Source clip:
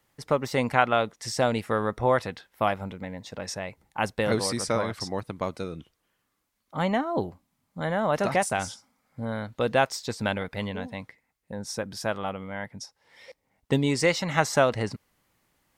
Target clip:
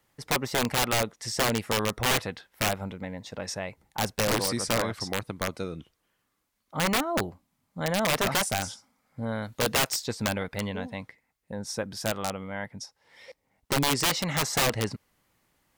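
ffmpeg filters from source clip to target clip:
-filter_complex "[0:a]asettb=1/sr,asplit=3[a][b][c];[a]atrim=end=9.424[d];[b]atrim=start=9.42:end=10.04,asetpts=PTS-STARTPTS,afade=t=in:d=0.004:c=qsin,afade=t=out:st=0.616:d=0.004:c=qsin,aemphasis=mode=production:type=cd[e];[c]atrim=start=10.036[f];[d][e]acrossfade=d=0.004:c1=hsin:c2=qsin[g];[g][f]acrossfade=d=0.004:c1=qsin:c2=hsin,aeval=exprs='(mod(7.94*val(0)+1,2)-1)/7.94':c=same"

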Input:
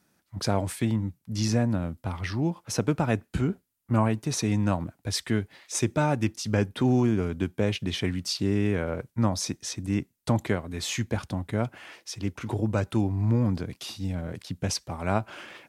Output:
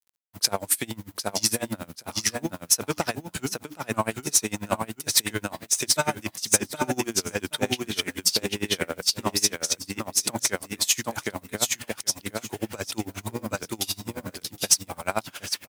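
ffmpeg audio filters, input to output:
-filter_complex "[0:a]aemphasis=mode=production:type=riaa,bandreject=f=60:t=h:w=6,bandreject=f=120:t=h:w=6,bandreject=f=180:t=h:w=6,bandreject=f=240:t=h:w=6,bandreject=f=300:t=h:w=6,asplit=2[a][b];[b]aeval=exprs='sgn(val(0))*max(abs(val(0))-0.0282,0)':c=same,volume=-5dB[c];[a][c]amix=inputs=2:normalize=0,acrusher=bits=7:mix=0:aa=0.000001,asoftclip=type=tanh:threshold=-11dB,asplit=2[d][e];[e]aecho=0:1:770|1540|2310:0.708|0.127|0.0229[f];[d][f]amix=inputs=2:normalize=0,aeval=exprs='val(0)*pow(10,-26*(0.5-0.5*cos(2*PI*11*n/s))/20)':c=same,volume=4.5dB"

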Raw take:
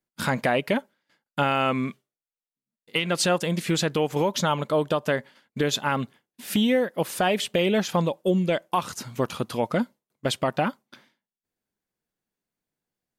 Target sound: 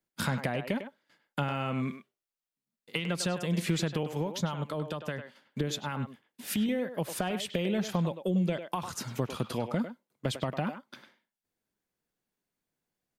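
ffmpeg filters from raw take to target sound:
-filter_complex "[0:a]acrossover=split=180[a][b];[b]acompressor=threshold=-31dB:ratio=6[c];[a][c]amix=inputs=2:normalize=0,asettb=1/sr,asplit=3[d][e][f];[d]atrim=end=4.034[g];[e]atrim=start=4.03:end=6.69,asetpts=PTS-STARTPTS,afade=t=in:d=0.004:c=qsin,afade=t=out:st=2.656:d=0.004:c=qsin,acrossover=split=860[h][i];[h]aeval=exprs='val(0)*(1-0.5/2+0.5/2*cos(2*PI*5*n/s))':c=same[j];[i]aeval=exprs='val(0)*(1-0.5/2-0.5/2*cos(2*PI*5*n/s))':c=same[k];[j][k]amix=inputs=2:normalize=0[l];[f]atrim=start=6.686[m];[g][l]acrossfade=d=0.004:c1=hsin:c2=qsin[n];[n][m]acrossfade=d=0.004:c1=qsin:c2=hsin,asplit=2[o][p];[p]adelay=100,highpass=300,lowpass=3.4k,asoftclip=type=hard:threshold=-21.5dB,volume=-8dB[q];[o][q]amix=inputs=2:normalize=0"

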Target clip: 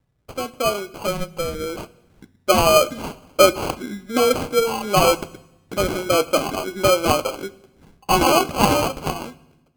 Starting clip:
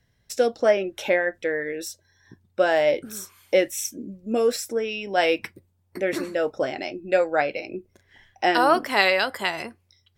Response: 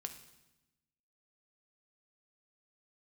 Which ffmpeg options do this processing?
-filter_complex "[0:a]flanger=delay=1:depth=7:regen=-40:speed=0.33:shape=triangular,dynaudnorm=f=710:g=5:m=11.5dB,acrusher=samples=25:mix=1:aa=0.000001,asplit=2[a][b];[1:a]atrim=start_sample=2205[c];[b][c]afir=irnorm=-1:irlink=0,volume=-2.5dB[d];[a][d]amix=inputs=2:normalize=0,asetrate=45938,aresample=44100,volume=-2.5dB"

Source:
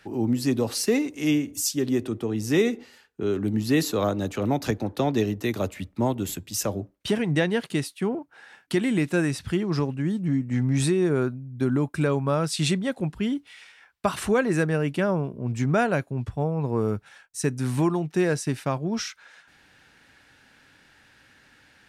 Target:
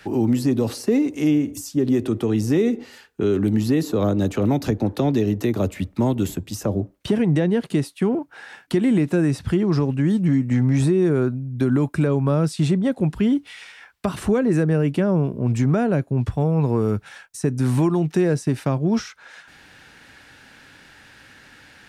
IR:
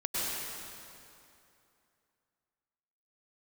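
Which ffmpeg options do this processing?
-filter_complex "[0:a]acrossover=split=460|1200[a][b][c];[a]acompressor=threshold=-23dB:ratio=4[d];[b]acompressor=threshold=-39dB:ratio=4[e];[c]acompressor=threshold=-46dB:ratio=4[f];[d][e][f]amix=inputs=3:normalize=0,asplit=2[g][h];[h]alimiter=limit=-20.5dB:level=0:latency=1,volume=3dB[i];[g][i]amix=inputs=2:normalize=0,volume=1dB"

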